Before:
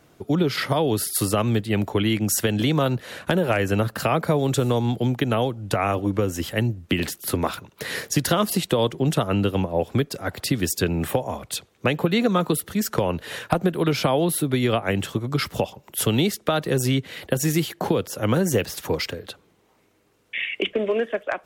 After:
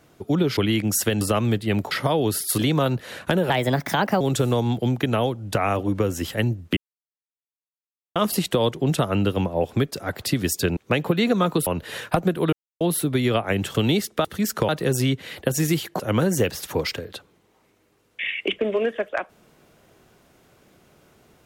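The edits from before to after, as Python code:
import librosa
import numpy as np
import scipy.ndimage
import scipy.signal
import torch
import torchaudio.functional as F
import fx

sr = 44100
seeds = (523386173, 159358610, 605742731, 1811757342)

y = fx.edit(x, sr, fx.swap(start_s=0.57, length_s=0.67, other_s=1.94, other_length_s=0.64),
    fx.speed_span(start_s=3.5, length_s=0.89, speed=1.26),
    fx.silence(start_s=6.95, length_s=1.39),
    fx.cut(start_s=10.95, length_s=0.76),
    fx.move(start_s=12.61, length_s=0.44, to_s=16.54),
    fx.silence(start_s=13.91, length_s=0.28),
    fx.cut(start_s=15.13, length_s=0.91),
    fx.cut(start_s=17.85, length_s=0.29), tone=tone)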